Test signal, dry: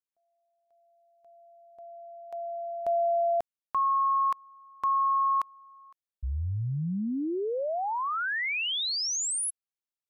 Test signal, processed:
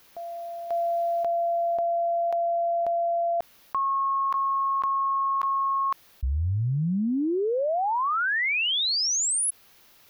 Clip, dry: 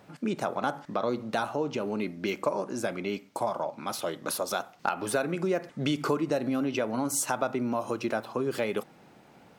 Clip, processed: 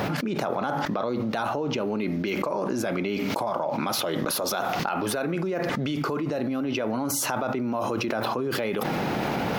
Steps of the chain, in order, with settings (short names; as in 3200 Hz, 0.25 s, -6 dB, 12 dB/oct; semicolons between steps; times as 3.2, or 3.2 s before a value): bell 8200 Hz -11 dB 0.62 oct; limiter -22 dBFS; fast leveller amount 100%